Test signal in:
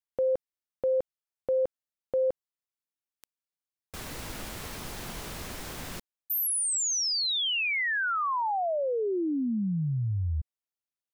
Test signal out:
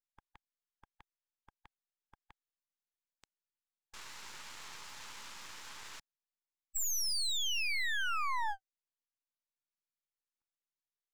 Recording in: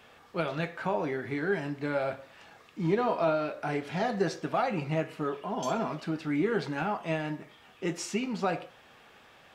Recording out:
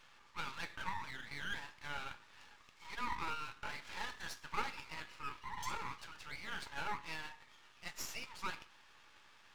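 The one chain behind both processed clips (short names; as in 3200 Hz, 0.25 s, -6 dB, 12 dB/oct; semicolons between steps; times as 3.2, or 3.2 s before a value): brick-wall FIR band-pass 810–7800 Hz; half-wave rectifier; gain -1.5 dB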